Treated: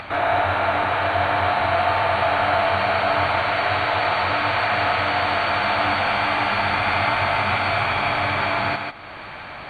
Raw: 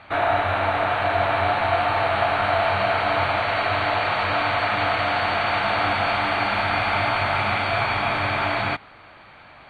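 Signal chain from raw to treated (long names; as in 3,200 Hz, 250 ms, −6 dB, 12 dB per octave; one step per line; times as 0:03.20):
upward compression, threshold −26 dBFS
feedback echo with a high-pass in the loop 146 ms, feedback 15%, high-pass 220 Hz, level −4 dB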